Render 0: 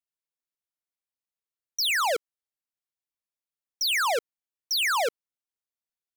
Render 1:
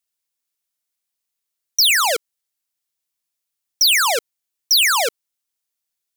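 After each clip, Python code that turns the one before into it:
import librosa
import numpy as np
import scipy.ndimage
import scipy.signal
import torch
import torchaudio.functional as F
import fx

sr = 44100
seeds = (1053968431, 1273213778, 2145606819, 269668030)

y = fx.high_shelf(x, sr, hz=2700.0, db=10.5)
y = y * 10.0 ** (4.0 / 20.0)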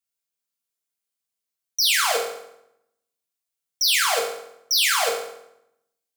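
y = fx.rev_fdn(x, sr, rt60_s=0.8, lf_ratio=1.35, hf_ratio=0.8, size_ms=13.0, drr_db=-3.0)
y = y * 10.0 ** (-8.5 / 20.0)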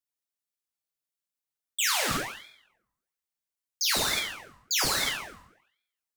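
y = fx.ring_lfo(x, sr, carrier_hz=1700.0, swing_pct=70, hz=1.2)
y = y * 10.0 ** (-3.5 / 20.0)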